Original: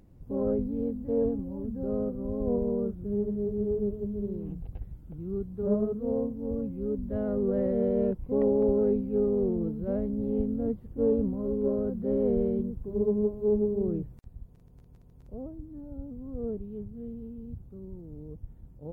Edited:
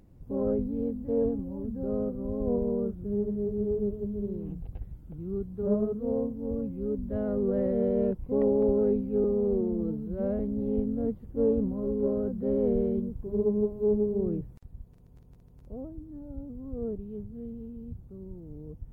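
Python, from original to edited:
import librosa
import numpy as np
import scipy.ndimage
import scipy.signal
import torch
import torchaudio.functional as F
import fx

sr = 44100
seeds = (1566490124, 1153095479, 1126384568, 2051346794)

y = fx.edit(x, sr, fx.stretch_span(start_s=9.24, length_s=0.77, factor=1.5), tone=tone)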